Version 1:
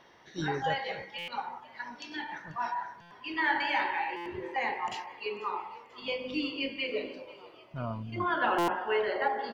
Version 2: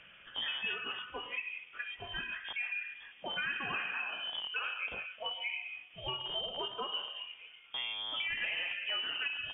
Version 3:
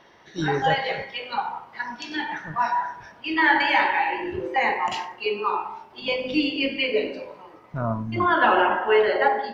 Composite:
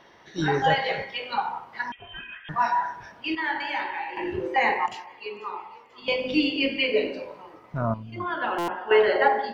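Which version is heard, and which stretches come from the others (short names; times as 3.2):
3
1.92–2.49 from 2
3.35–4.17 from 1
4.86–6.08 from 1
7.94–8.91 from 1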